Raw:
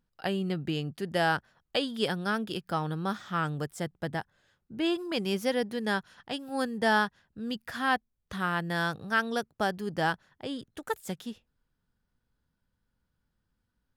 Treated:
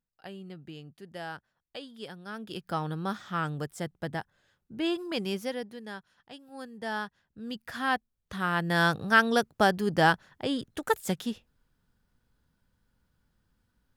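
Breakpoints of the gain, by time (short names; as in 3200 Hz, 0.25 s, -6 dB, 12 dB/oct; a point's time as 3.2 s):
2.24 s -13 dB
2.65 s -1 dB
5.24 s -1 dB
5.89 s -12 dB
6.64 s -12 dB
7.74 s -1 dB
8.33 s -1 dB
8.86 s +6 dB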